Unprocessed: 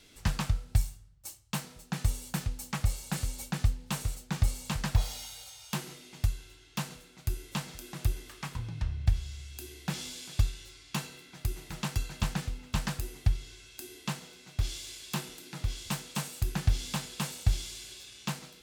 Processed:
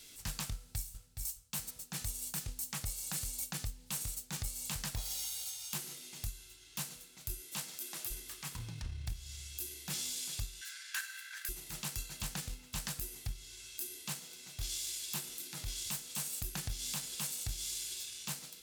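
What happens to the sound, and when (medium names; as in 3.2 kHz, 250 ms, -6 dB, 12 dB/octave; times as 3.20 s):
0.52–1.28 s: echo throw 420 ms, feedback 25%, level -9 dB
7.40–8.10 s: high-pass 140 Hz -> 390 Hz
10.61–11.49 s: resonant high-pass 1.6 kHz, resonance Q 14
whole clip: pre-emphasis filter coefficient 0.8; transient shaper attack -9 dB, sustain -5 dB; compression, threshold -44 dBFS; trim +9 dB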